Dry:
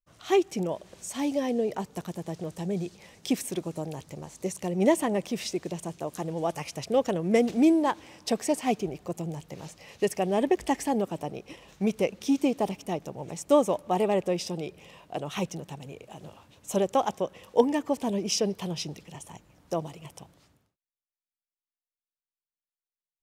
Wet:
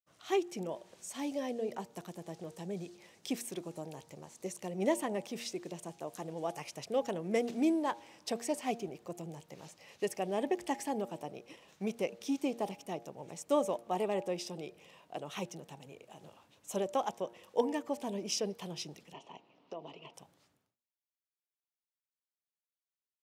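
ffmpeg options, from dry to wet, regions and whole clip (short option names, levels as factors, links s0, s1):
-filter_complex "[0:a]asettb=1/sr,asplit=3[s0][s1][s2];[s0]atrim=end=19.134[s3];[s1]atrim=start=19.13:end=20.14,asetpts=PTS-STARTPTS,afade=t=in:d=0.004:c=qsin,afade=t=out:st=1.006:d=0.004:c=qsin,highpass=170,equalizer=f=260:t=q:w=4:g=6,equalizer=f=420:t=q:w=4:g=8,equalizer=f=660:t=q:w=4:g=5,equalizer=f=1000:t=q:w=4:g=6,equalizer=f=1600:t=q:w=4:g=-7,equalizer=f=2800:t=q:w=4:g=9,lowpass=f=4700:w=0.5412,lowpass=f=4700:w=1.3066,acompressor=threshold=0.0251:ratio=4:attack=3.2:release=140:knee=1:detection=peak[s4];[s2]atrim=start=20.136[s5];[s3][s4]acrossfade=d=0.004:c1=hsin:c2=qsin[s6];[s6][s5]acrossfade=d=0.004:c1=qsin:c2=hsin,highpass=88,lowshelf=f=170:g=-8,bandreject=f=117.1:t=h:w=4,bandreject=f=234.2:t=h:w=4,bandreject=f=351.3:t=h:w=4,bandreject=f=468.4:t=h:w=4,bandreject=f=585.5:t=h:w=4,bandreject=f=702.6:t=h:w=4,bandreject=f=819.7:t=h:w=4,bandreject=f=936.8:t=h:w=4,volume=0.447"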